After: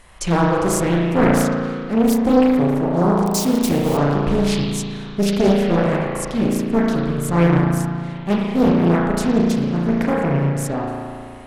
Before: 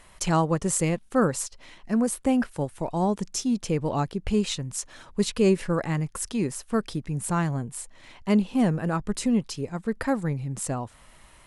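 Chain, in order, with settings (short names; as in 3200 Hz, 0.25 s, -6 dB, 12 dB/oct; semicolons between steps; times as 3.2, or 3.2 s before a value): 3.25–3.97 switching spikes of -21.5 dBFS; low shelf 340 Hz +3 dB; in parallel at -6 dB: hard clip -18.5 dBFS, distortion -12 dB; on the sum: spring tank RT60 2.2 s, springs 35 ms, chirp 25 ms, DRR -4 dB; Doppler distortion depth 0.88 ms; gain -1 dB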